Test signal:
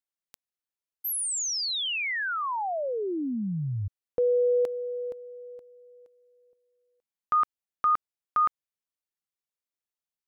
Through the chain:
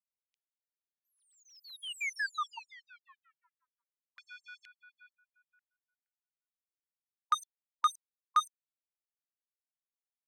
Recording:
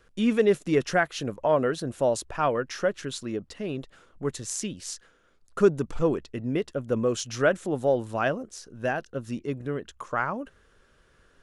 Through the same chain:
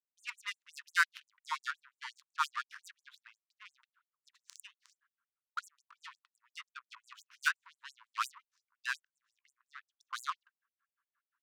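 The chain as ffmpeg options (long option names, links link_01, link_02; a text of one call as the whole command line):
ffmpeg -i in.wav -af "adynamicsmooth=sensitivity=3:basefreq=560,afftfilt=real='re*gte(b*sr/1024,900*pow(7200/900,0.5+0.5*sin(2*PI*5.7*pts/sr)))':imag='im*gte(b*sr/1024,900*pow(7200/900,0.5+0.5*sin(2*PI*5.7*pts/sr)))':win_size=1024:overlap=0.75" out.wav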